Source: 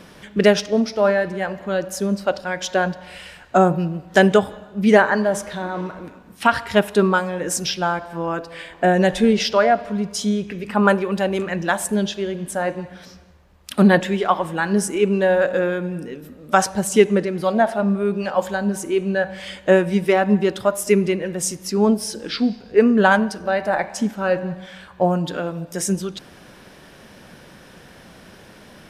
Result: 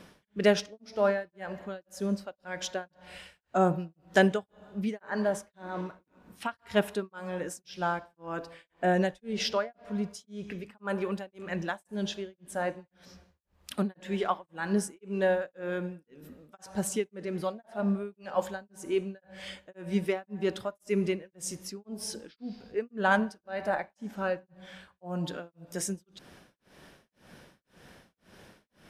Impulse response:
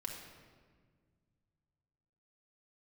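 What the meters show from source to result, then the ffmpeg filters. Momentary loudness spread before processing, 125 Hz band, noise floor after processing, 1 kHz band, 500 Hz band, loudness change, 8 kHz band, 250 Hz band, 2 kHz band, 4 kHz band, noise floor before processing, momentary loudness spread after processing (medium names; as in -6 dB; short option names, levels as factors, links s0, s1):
11 LU, -12.0 dB, -79 dBFS, -13.0 dB, -12.5 dB, -12.5 dB, -12.5 dB, -13.0 dB, -12.5 dB, -11.0 dB, -46 dBFS, 15 LU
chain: -af "tremolo=f=1.9:d=1,volume=0.398"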